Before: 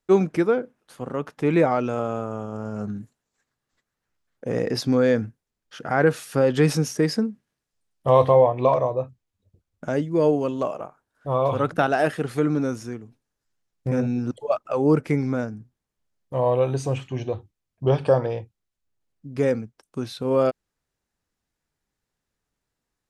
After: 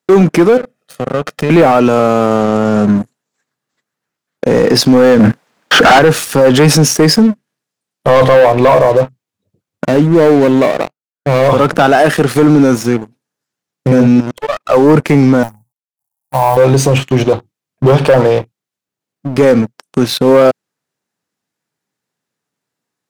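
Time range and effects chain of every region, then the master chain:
0:00.57–0:01.50: parametric band 1,000 Hz −8 dB 0.72 octaves + comb filter 1.6 ms, depth 58% + downward compressor 4 to 1, threshold −34 dBFS
0:05.19–0:05.99: parametric band 380 Hz −7.5 dB 0.29 octaves + mid-hump overdrive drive 38 dB, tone 1,300 Hz, clips at −7.5 dBFS
0:09.85–0:11.48: running median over 41 samples + downward expander −41 dBFS
0:14.20–0:14.67: gain on one half-wave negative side −12 dB + parametric band 2,700 Hz +5 dB 2.1 octaves + downward compressor 8 to 1, threshold −32 dBFS
0:15.43–0:16.57: mu-law and A-law mismatch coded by A + drawn EQ curve 100 Hz 0 dB, 210 Hz −14 dB, 470 Hz −21 dB, 840 Hz +7 dB, 1,300 Hz −16 dB, 3,500 Hz −21 dB, 10,000 Hz +9 dB
whole clip: high-pass filter 130 Hz 24 dB per octave; leveller curve on the samples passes 3; boost into a limiter +12 dB; level −1 dB

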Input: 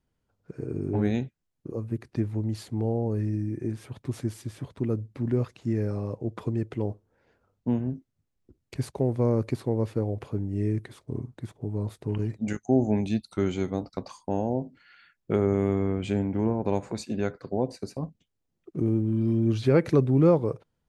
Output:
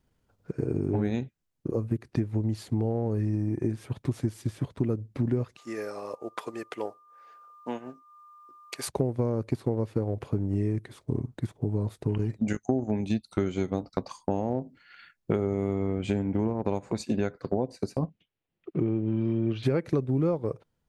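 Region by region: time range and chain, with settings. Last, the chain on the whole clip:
0:05.56–0:08.87: high-pass filter 660 Hz + steady tone 1,200 Hz −56 dBFS + high-shelf EQ 5,700 Hz +6 dB
0:18.05–0:19.63: low-pass with resonance 2,800 Hz, resonance Q 1.8 + low-shelf EQ 76 Hz −12 dB + notch filter 250 Hz, Q 6
whole clip: transient designer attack +1 dB, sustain −6 dB; downward compressor, threshold −29 dBFS; level +6 dB

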